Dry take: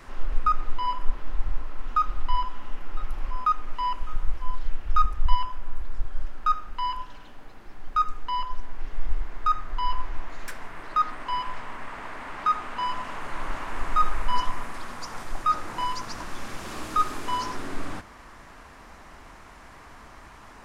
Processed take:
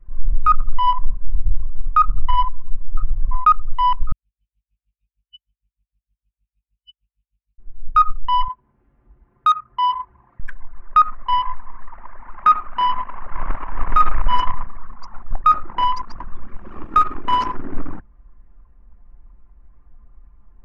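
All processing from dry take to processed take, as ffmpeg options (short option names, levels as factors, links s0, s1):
-filter_complex "[0:a]asettb=1/sr,asplit=3[s0][s1][s2];[s0]atrim=end=4.124[s3];[s1]atrim=start=4.12:end=7.59,asetpts=PTS-STARTPTS,afade=t=in:d=0.004:c=qsin,afade=t=out:st=3.466:d=0.004:c=qsin,asuperpass=centerf=4600:order=20:qfactor=0.77,aeval=exprs='val(0)+0.000447*(sin(2*PI*50*n/s)+sin(2*PI*2*50*n/s)/2+sin(2*PI*3*50*n/s)/3+sin(2*PI*4*50*n/s)/4+sin(2*PI*5*50*n/s)/5)':c=same,aeval=exprs='val(0)*pow(10,-40*(0.5-0.5*cos(2*PI*6.5*n/s))/20)':c=same[s4];[s2]atrim=start=7.586[s5];[s3][s4]acrossfade=d=0.004:c1=hsin:c2=qsin[s6];[s6][s5]acrossfade=d=0.004:c1=qsin:c2=hsin,asettb=1/sr,asplit=3[s7][s8][s9];[s7]atrim=end=8.484[s10];[s8]atrim=start=8.48:end=10.4,asetpts=PTS-STARTPTS,afade=t=in:d=0.004:c=qsin,afade=t=out:st=1.916:d=0.004:c=qsin,highpass=f=87:w=0.5412,highpass=f=87:w=1.3066,volume=11.2,asoftclip=hard,volume=0.0891[s11];[s9]atrim=start=10.396[s12];[s10][s11]acrossfade=d=0.004:c1=hsin:c2=qsin[s13];[s13][s12]acrossfade=d=0.004:c1=qsin:c2=hsin,anlmdn=39.8,highshelf=f=3400:t=q:w=1.5:g=-6.5,alimiter=level_in=5.31:limit=0.891:release=50:level=0:latency=1,volume=0.631"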